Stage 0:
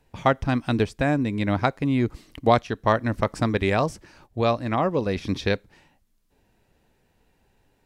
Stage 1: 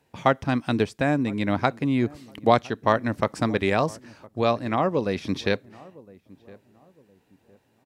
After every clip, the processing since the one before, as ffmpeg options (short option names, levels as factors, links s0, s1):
-filter_complex "[0:a]highpass=120,asplit=2[s0][s1];[s1]adelay=1011,lowpass=f=880:p=1,volume=0.0841,asplit=2[s2][s3];[s3]adelay=1011,lowpass=f=880:p=1,volume=0.35,asplit=2[s4][s5];[s5]adelay=1011,lowpass=f=880:p=1,volume=0.35[s6];[s0][s2][s4][s6]amix=inputs=4:normalize=0"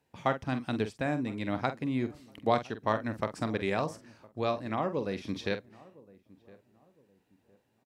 -filter_complex "[0:a]asplit=2[s0][s1];[s1]adelay=46,volume=0.299[s2];[s0][s2]amix=inputs=2:normalize=0,volume=0.376"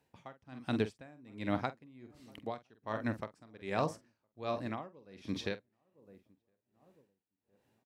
-af "aeval=exprs='val(0)*pow(10,-26*(0.5-0.5*cos(2*PI*1.3*n/s))/20)':c=same"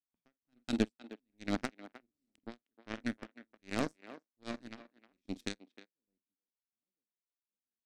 -filter_complex "[0:a]aeval=exprs='0.168*(cos(1*acos(clip(val(0)/0.168,-1,1)))-cos(1*PI/2))+0.00266*(cos(6*acos(clip(val(0)/0.168,-1,1)))-cos(6*PI/2))+0.0237*(cos(7*acos(clip(val(0)/0.168,-1,1)))-cos(7*PI/2))':c=same,equalizer=f=125:t=o:w=1:g=-7,equalizer=f=250:t=o:w=1:g=10,equalizer=f=500:t=o:w=1:g=-3,equalizer=f=1000:t=o:w=1:g=-8,equalizer=f=8000:t=o:w=1:g=6,asplit=2[s0][s1];[s1]adelay=310,highpass=300,lowpass=3400,asoftclip=type=hard:threshold=0.0562,volume=0.2[s2];[s0][s2]amix=inputs=2:normalize=0,volume=1.19"